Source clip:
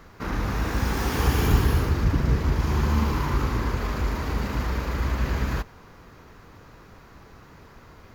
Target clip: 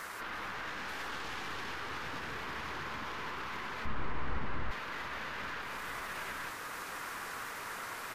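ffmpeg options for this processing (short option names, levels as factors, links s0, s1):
-filter_complex "[0:a]bandpass=f=1700:t=q:w=1.1:csg=0,acrusher=bits=9:mix=0:aa=0.000001,aeval=exprs='0.0891*(cos(1*acos(clip(val(0)/0.0891,-1,1)))-cos(1*PI/2))+0.0398*(cos(4*acos(clip(val(0)/0.0891,-1,1)))-cos(4*PI/2))+0.0251*(cos(5*acos(clip(val(0)/0.0891,-1,1)))-cos(5*PI/2))':c=same,acompressor=threshold=0.0112:ratio=6,asplit=2[s0][s1];[s1]aecho=0:1:321|880:0.282|0.596[s2];[s0][s2]amix=inputs=2:normalize=0,alimiter=level_in=3.76:limit=0.0631:level=0:latency=1:release=15,volume=0.266,asettb=1/sr,asplit=3[s3][s4][s5];[s3]atrim=end=3.854[s6];[s4]atrim=start=3.85:end=4.71,asetpts=PTS-STARTPTS,afade=t=in:d=0.004:c=qsin,afade=t=out:st=0.856:d=0.004:c=qsin,aemphasis=mode=reproduction:type=riaa[s7];[s5]atrim=start=4.706[s8];[s6][s7]acrossfade=d=0.004:c1=hsin:c2=qsin[s9];[s9][s8]acrossfade=d=0.004:c1=qsin:c2=hsin,volume=1.68" -ar 44100 -c:a libvorbis -b:a 48k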